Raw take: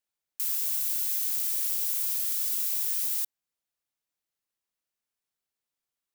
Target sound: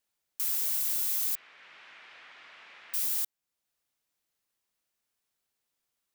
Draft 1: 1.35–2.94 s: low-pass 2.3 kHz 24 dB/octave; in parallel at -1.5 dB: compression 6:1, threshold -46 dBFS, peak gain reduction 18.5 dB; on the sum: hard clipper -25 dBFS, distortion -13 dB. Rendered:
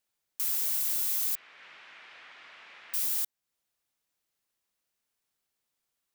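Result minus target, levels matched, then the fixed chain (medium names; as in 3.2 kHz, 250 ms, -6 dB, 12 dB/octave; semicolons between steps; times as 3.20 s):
compression: peak gain reduction -7 dB
1.35–2.94 s: low-pass 2.3 kHz 24 dB/octave; in parallel at -1.5 dB: compression 6:1, threshold -54.5 dBFS, peak gain reduction 25.5 dB; on the sum: hard clipper -25 dBFS, distortion -14 dB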